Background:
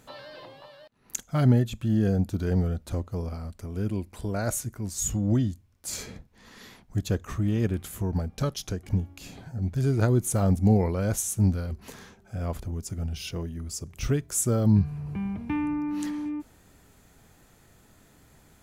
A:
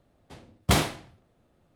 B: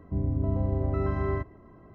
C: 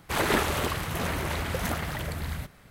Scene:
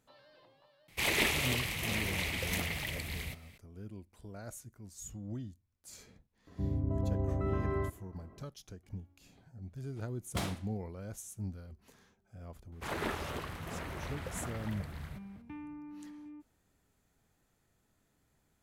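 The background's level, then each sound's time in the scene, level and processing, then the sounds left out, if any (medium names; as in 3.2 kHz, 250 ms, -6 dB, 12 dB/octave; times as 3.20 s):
background -17.5 dB
0.88 s: add C -8.5 dB + resonant high shelf 1.8 kHz +6.5 dB, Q 3
6.47 s: add B -5 dB + high-pass 54 Hz
9.66 s: add A -14.5 dB
12.72 s: add C -11 dB + treble shelf 4.4 kHz -7 dB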